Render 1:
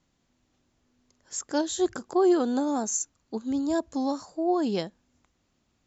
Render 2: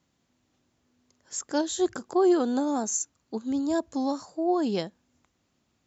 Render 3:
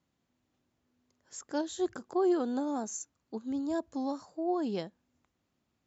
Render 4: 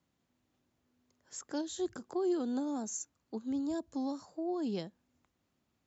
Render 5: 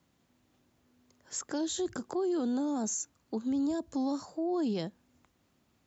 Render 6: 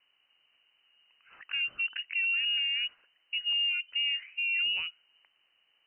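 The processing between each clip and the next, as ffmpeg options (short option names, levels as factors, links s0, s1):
-af "highpass=70"
-af "highshelf=f=4500:g=-7,volume=0.501"
-filter_complex "[0:a]acrossover=split=330|3000[s0][s1][s2];[s1]acompressor=threshold=0.00708:ratio=2.5[s3];[s0][s3][s2]amix=inputs=3:normalize=0"
-af "alimiter=level_in=2.99:limit=0.0631:level=0:latency=1:release=23,volume=0.335,volume=2.51"
-af "lowpass=f=2600:t=q:w=0.5098,lowpass=f=2600:t=q:w=0.6013,lowpass=f=2600:t=q:w=0.9,lowpass=f=2600:t=q:w=2.563,afreqshift=-3100,volume=1.12"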